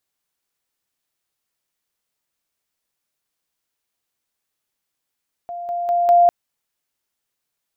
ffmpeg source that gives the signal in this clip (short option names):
-f lavfi -i "aevalsrc='pow(10,(-27+6*floor(t/0.2))/20)*sin(2*PI*697*t)':d=0.8:s=44100"